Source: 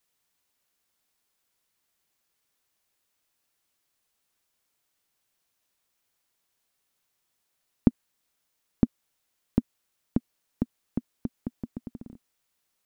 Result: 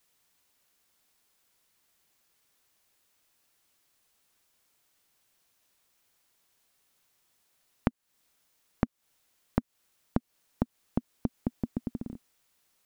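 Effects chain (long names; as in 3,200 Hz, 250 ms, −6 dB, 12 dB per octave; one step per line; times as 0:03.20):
downward compressor 12 to 1, threshold −29 dBFS, peak gain reduction 17 dB
level +5.5 dB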